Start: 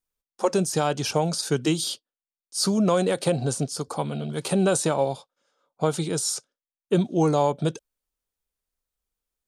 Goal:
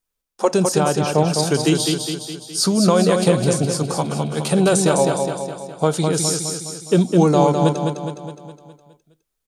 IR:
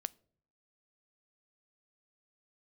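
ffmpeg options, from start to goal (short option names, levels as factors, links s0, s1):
-filter_complex "[0:a]asettb=1/sr,asplit=3[s0][s1][s2];[s0]atrim=end=0.784[s3];[s1]atrim=start=0.78:end=1.34,asetpts=PTS-STARTPTS,afade=t=in:d=0.004:c=qsin,afade=t=out:st=0.556:d=0.004:c=qsin,aemphasis=mode=reproduction:type=75kf[s4];[s2]atrim=start=1.336[s5];[s3][s4]acrossfade=d=0.004:c1=hsin:c2=qsin[s6];[s6][s5]acrossfade=d=0.004:c1=qsin:c2=hsin,aecho=1:1:207|414|621|828|1035|1242|1449:0.562|0.298|0.158|0.0837|0.0444|0.0235|0.0125[s7];[1:a]atrim=start_sample=2205,afade=t=out:st=0.15:d=0.01,atrim=end_sample=7056[s8];[s7][s8]afir=irnorm=-1:irlink=0,volume=2.24"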